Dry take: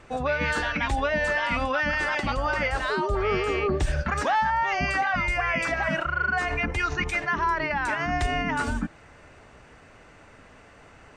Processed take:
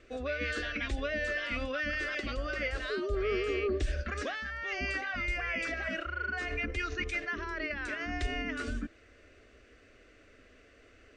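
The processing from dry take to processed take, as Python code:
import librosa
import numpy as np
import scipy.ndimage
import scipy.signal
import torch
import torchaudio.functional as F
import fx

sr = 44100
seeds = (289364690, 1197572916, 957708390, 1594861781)

y = scipy.signal.sosfilt(scipy.signal.butter(2, 6000.0, 'lowpass', fs=sr, output='sos'), x)
y = fx.fixed_phaser(y, sr, hz=370.0, stages=4)
y = y * 10.0 ** (-4.5 / 20.0)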